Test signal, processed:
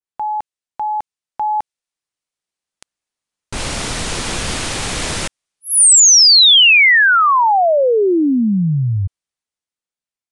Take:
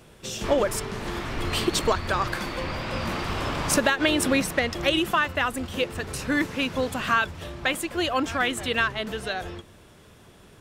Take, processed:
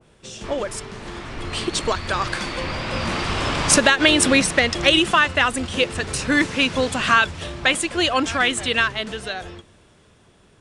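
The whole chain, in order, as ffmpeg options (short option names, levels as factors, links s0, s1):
-af "dynaudnorm=f=510:g=9:m=4.73,aresample=22050,aresample=44100,adynamicequalizer=threshold=0.0447:dfrequency=1800:dqfactor=0.7:tfrequency=1800:tqfactor=0.7:attack=5:release=100:ratio=0.375:range=2.5:mode=boostabove:tftype=highshelf,volume=0.668"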